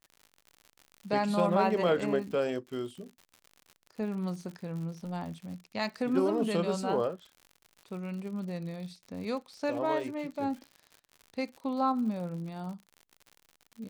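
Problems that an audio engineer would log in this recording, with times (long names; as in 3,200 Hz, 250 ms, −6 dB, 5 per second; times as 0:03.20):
surface crackle 91 per second −41 dBFS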